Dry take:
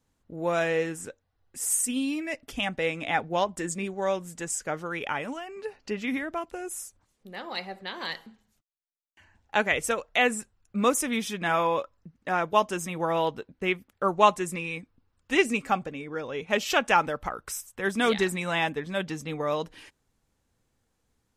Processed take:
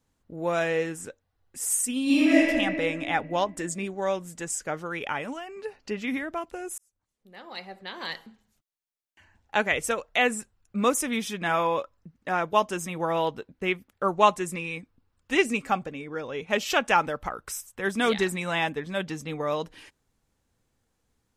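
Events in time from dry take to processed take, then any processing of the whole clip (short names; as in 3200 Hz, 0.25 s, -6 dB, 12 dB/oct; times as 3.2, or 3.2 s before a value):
2.03–2.44 reverb throw, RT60 2.2 s, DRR -11.5 dB
6.78–8.16 fade in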